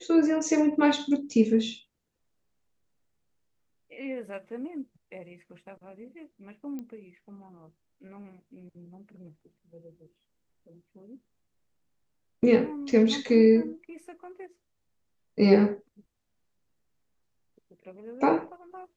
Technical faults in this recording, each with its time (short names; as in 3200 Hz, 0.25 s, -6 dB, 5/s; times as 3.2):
6.79 pop -27 dBFS
12.92 gap 2.2 ms